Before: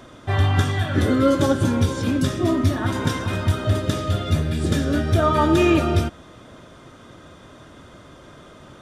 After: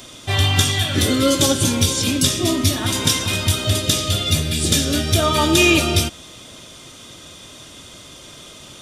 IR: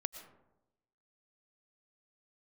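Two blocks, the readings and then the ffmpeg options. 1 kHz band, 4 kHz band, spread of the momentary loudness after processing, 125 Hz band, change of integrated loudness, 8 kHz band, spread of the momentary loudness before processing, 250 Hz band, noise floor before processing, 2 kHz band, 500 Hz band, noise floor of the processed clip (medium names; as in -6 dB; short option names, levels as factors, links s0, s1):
0.0 dB, +14.0 dB, 5 LU, 0.0 dB, +3.5 dB, +17.5 dB, 6 LU, 0.0 dB, -46 dBFS, +6.0 dB, 0.0 dB, -41 dBFS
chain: -af "aexciter=amount=5.5:drive=4.6:freq=2300"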